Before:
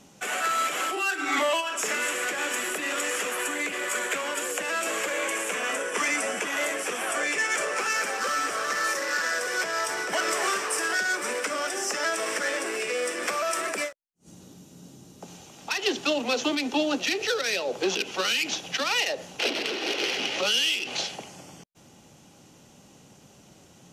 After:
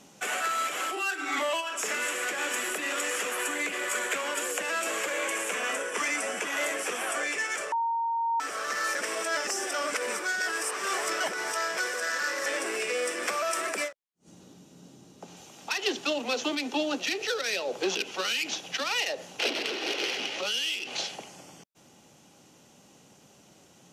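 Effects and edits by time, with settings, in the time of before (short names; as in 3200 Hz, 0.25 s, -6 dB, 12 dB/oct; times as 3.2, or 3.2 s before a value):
7.72–8.4 bleep 923 Hz -16.5 dBFS
8.95–12.46 reverse
13.88–15.37 high shelf 8100 Hz -10.5 dB
whole clip: low shelf 120 Hz -10.5 dB; vocal rider 0.5 s; gain -3 dB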